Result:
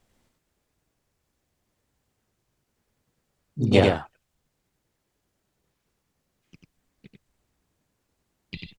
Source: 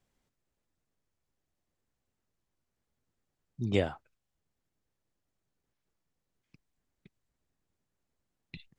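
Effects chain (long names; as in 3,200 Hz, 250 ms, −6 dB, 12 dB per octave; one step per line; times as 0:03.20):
harmonic generator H 4 −25 dB, 7 −44 dB, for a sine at −12.5 dBFS
pitch-shifted copies added +3 semitones −5 dB
single-tap delay 93 ms −3.5 dB
level +8.5 dB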